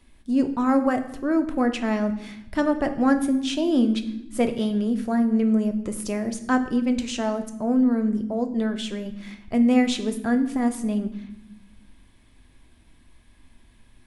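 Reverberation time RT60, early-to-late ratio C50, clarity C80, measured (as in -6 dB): 0.90 s, 11.5 dB, 14.5 dB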